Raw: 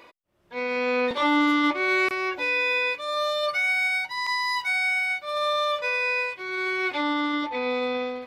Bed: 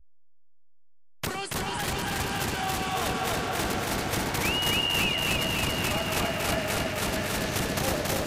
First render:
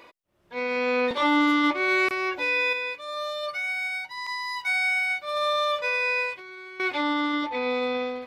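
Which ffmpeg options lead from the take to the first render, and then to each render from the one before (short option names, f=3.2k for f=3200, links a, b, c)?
-filter_complex "[0:a]asettb=1/sr,asplit=3[a][b][c];[a]atrim=end=6.374[d];[b]atrim=start=6.37:end=6.8,asetpts=PTS-STARTPTS,afade=t=in:d=0.004:c=qsin,afade=t=out:st=0.426:d=0.004:c=qsin,acompressor=threshold=-39dB:ratio=12:attack=3.2:release=140:knee=1:detection=peak[e];[c]atrim=start=6.796[f];[d][e]acrossfade=d=0.004:c1=hsin:c2=qsin[g];[g][f]acrossfade=d=0.004:c1=qsin:c2=hsin,asplit=3[h][i][j];[h]atrim=end=2.732[k];[i]atrim=start=2.728:end=4.652,asetpts=PTS-STARTPTS,volume=-5.5dB[l];[j]atrim=start=4.648[m];[k][l]acrossfade=d=0.004:c1=hsin:c2=hsin[n];[n][m]acrossfade=d=0.004:c1=hsin:c2=hsin"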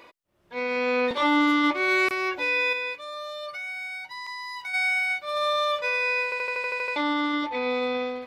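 -filter_complex "[0:a]asettb=1/sr,asplit=3[a][b][c];[a]atrim=end=1.744[d];[b]atrim=start=1.74:end=2.32,asetpts=PTS-STARTPTS,afade=t=in:d=0.004:c=qsin,afade=t=out:st=0.576:d=0.004:c=qsin,highshelf=f=6.9k:g=5.5[e];[c]atrim=start=2.316[f];[d][e]acrossfade=d=0.004:c1=hsin:c2=qsin[g];[g][f]acrossfade=d=0.004:c1=qsin:c2=hsin,asplit=3[h][i][j];[h]afade=t=out:st=2.97:d=0.02[k];[i]acompressor=threshold=-34dB:ratio=2.5:attack=3.2:release=140:knee=1:detection=peak,afade=t=in:st=2.97:d=0.02,afade=t=out:st=4.73:d=0.02[l];[j]afade=t=in:st=4.73:d=0.02[m];[k][l][m]amix=inputs=3:normalize=0,asplit=10[n][o][p][q][r][s][t][u][v][w];[n]atrim=end=6.322[x];[o]atrim=start=6.238:end=6.322[y];[p]atrim=start=6.238:end=6.322[z];[q]atrim=start=6.238:end=6.322[aa];[r]atrim=start=6.238:end=6.322[ab];[s]atrim=start=6.238:end=6.322[ac];[t]atrim=start=6.238:end=6.322[ad];[u]atrim=start=6.238:end=6.322[ae];[v]atrim=start=6.238:end=6.322[af];[w]atrim=start=6.958[ag];[x][y]acrossfade=d=0.004:c1=hsin:c2=hsin[ah];[ah][z]acrossfade=d=0.004:c1=hsin:c2=hsin[ai];[ai][aa]acrossfade=d=0.004:c1=hsin:c2=hsin[aj];[aj][ab]acrossfade=d=0.004:c1=hsin:c2=hsin[ak];[ak][ac]acrossfade=d=0.004:c1=hsin:c2=hsin[al];[al][ad]acrossfade=d=0.004:c1=hsin:c2=hsin[am];[am][ae]acrossfade=d=0.004:c1=hsin:c2=hsin[an];[an][af]acrossfade=d=0.004:c1=hsin:c2=hsin[ao];[ao][ag]acrossfade=d=0.004:c1=hsin:c2=hsin"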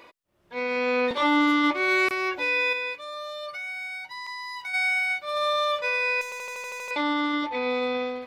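-filter_complex "[0:a]asettb=1/sr,asplit=3[a][b][c];[a]atrim=end=6.214[d];[b]atrim=start=6.21:end=6.91,asetpts=PTS-STARTPTS,afade=t=in:d=0.004:c=qsin,afade=t=out:st=0.696:d=0.004:c=qsin,volume=34.5dB,asoftclip=hard,volume=-34.5dB[e];[c]atrim=start=6.906[f];[d][e]acrossfade=d=0.004:c1=hsin:c2=qsin[g];[g][f]acrossfade=d=0.004:c1=qsin:c2=hsin"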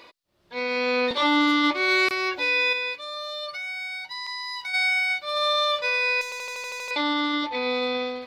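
-af "equalizer=f=4.3k:w=1.7:g=9.5"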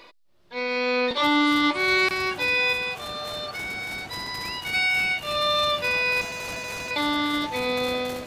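-filter_complex "[1:a]volume=-11dB[a];[0:a][a]amix=inputs=2:normalize=0"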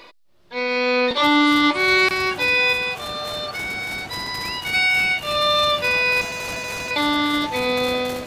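-af "volume=4.5dB"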